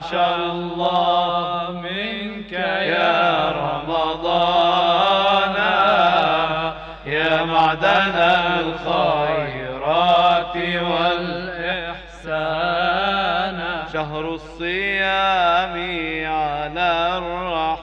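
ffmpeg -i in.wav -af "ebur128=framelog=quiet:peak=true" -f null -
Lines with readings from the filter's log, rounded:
Integrated loudness:
  I:         -19.2 LUFS
  Threshold: -29.2 LUFS
Loudness range:
  LRA:         4.2 LU
  Threshold: -39.0 LUFS
  LRA low:   -21.3 LUFS
  LRA high:  -17.1 LUFS
True peak:
  Peak:       -5.7 dBFS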